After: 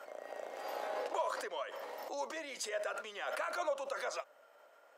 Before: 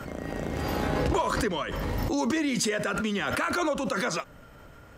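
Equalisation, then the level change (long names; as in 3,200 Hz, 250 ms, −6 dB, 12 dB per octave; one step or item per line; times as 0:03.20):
four-pole ladder high-pass 520 Hz, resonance 50%
−3.0 dB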